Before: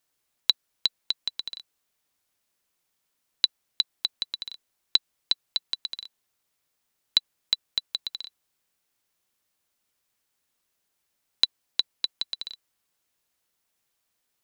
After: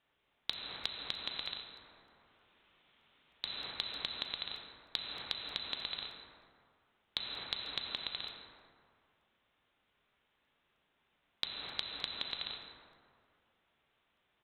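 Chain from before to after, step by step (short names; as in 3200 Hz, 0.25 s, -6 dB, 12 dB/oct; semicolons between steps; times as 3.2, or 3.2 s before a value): plate-style reverb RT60 2.1 s, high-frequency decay 0.45×, DRR 1 dB; downsampling 8000 Hz; compressor 10:1, threshold -38 dBFS, peak gain reduction 15.5 dB; crackling interface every 0.31 s, samples 64, repeat, from 0.53; 1.54–3.45 three-band squash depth 40%; gain +4.5 dB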